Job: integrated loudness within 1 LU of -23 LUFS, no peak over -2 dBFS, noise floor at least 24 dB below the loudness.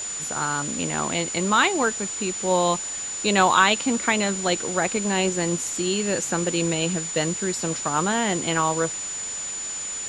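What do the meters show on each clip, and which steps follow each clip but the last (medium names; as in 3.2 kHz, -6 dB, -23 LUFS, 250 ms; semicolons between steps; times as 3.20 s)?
steady tone 7 kHz; tone level -29 dBFS; noise floor -31 dBFS; noise floor target -47 dBFS; loudness -23.0 LUFS; peak level -4.0 dBFS; loudness target -23.0 LUFS
-> band-stop 7 kHz, Q 30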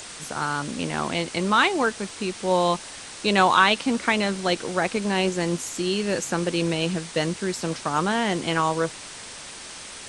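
steady tone not found; noise floor -40 dBFS; noise floor target -48 dBFS
-> noise reduction 8 dB, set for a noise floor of -40 dBFS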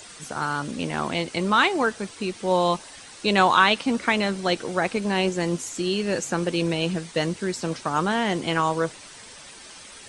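noise floor -44 dBFS; noise floor target -48 dBFS
-> noise reduction 6 dB, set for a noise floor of -44 dBFS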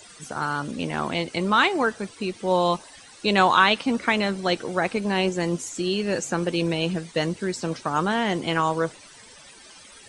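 noise floor -48 dBFS; loudness -24.0 LUFS; peak level -4.0 dBFS; loudness target -23.0 LUFS
-> trim +1 dB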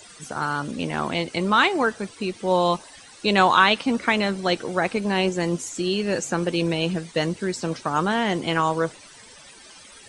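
loudness -23.0 LUFS; peak level -3.0 dBFS; noise floor -47 dBFS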